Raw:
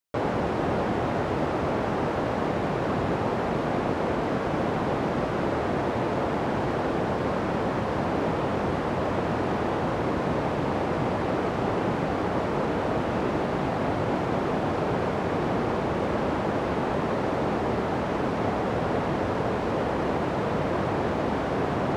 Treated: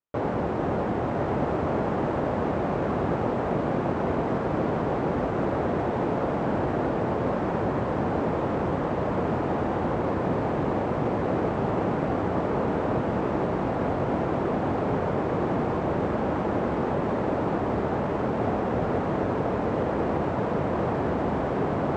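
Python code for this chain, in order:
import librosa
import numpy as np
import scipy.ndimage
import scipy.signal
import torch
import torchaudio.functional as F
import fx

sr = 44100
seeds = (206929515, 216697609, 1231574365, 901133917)

y = scipy.signal.medfilt(x, 9)
y = scipy.signal.sosfilt(scipy.signal.butter(12, 8500.0, 'lowpass', fs=sr, output='sos'), y)
y = fx.high_shelf(y, sr, hz=2100.0, db=-9.0)
y = y + 10.0 ** (-5.5 / 20.0) * np.pad(y, (int(1061 * sr / 1000.0), 0))[:len(y)]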